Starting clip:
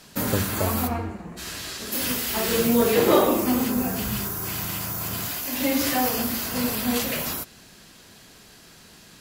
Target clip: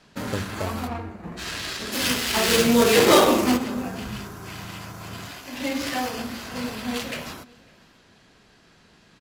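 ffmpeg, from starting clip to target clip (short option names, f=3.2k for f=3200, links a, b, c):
-filter_complex "[0:a]asplit=3[a][b][c];[a]afade=t=out:st=1.22:d=0.02[d];[b]acontrast=74,afade=t=in:st=1.22:d=0.02,afade=t=out:st=3.56:d=0.02[e];[c]afade=t=in:st=3.56:d=0.02[f];[d][e][f]amix=inputs=3:normalize=0,aecho=1:1:550:0.0668,adynamicsmooth=sensitivity=1:basefreq=1.7k,crystalizer=i=6.5:c=0,volume=-4.5dB"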